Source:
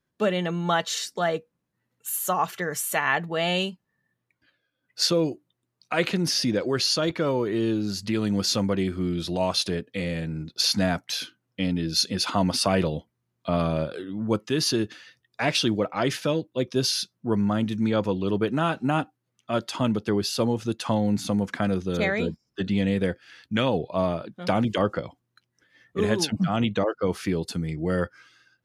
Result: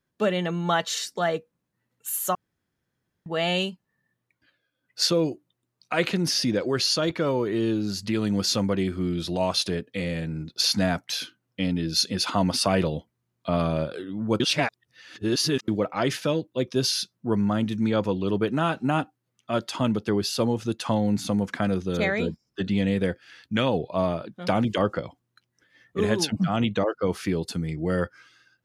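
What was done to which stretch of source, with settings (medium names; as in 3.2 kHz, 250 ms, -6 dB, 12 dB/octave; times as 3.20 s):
2.35–3.26 s: room tone
14.40–15.68 s: reverse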